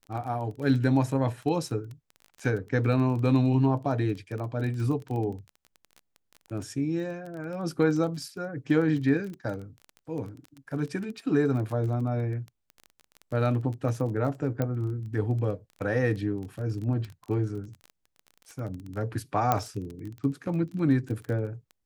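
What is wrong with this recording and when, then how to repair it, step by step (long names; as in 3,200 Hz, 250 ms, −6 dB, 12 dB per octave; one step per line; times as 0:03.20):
surface crackle 21 per second −34 dBFS
0:14.62: click −16 dBFS
0:19.52: click −10 dBFS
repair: click removal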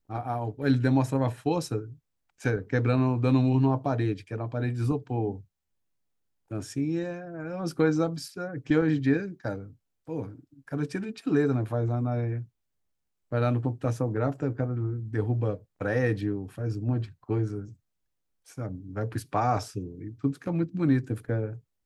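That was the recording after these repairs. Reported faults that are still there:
none of them is left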